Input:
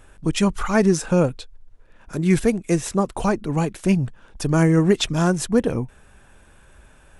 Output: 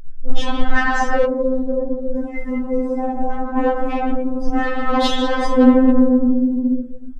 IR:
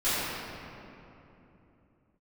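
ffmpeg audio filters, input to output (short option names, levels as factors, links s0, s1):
-filter_complex "[0:a]highshelf=f=9200:g=-7.5,asplit=6[s0][s1][s2][s3][s4][s5];[s1]adelay=132,afreqshift=-78,volume=0.112[s6];[s2]adelay=264,afreqshift=-156,volume=0.0684[s7];[s3]adelay=396,afreqshift=-234,volume=0.0417[s8];[s4]adelay=528,afreqshift=-312,volume=0.0254[s9];[s5]adelay=660,afreqshift=-390,volume=0.0155[s10];[s0][s6][s7][s8][s9][s10]amix=inputs=6:normalize=0[s11];[1:a]atrim=start_sample=2205,asetrate=61740,aresample=44100[s12];[s11][s12]afir=irnorm=-1:irlink=0,asplit=3[s13][s14][s15];[s13]afade=t=out:st=1.24:d=0.02[s16];[s14]acompressor=threshold=0.224:ratio=6,afade=t=in:st=1.24:d=0.02,afade=t=out:st=3.55:d=0.02[s17];[s15]afade=t=in:st=3.55:d=0.02[s18];[s16][s17][s18]amix=inputs=3:normalize=0,afftdn=nr=27:nf=-21,acontrast=73,bandreject=f=2400:w=7.4,afftfilt=real='re*3.46*eq(mod(b,12),0)':imag='im*3.46*eq(mod(b,12),0)':win_size=2048:overlap=0.75,volume=0.668"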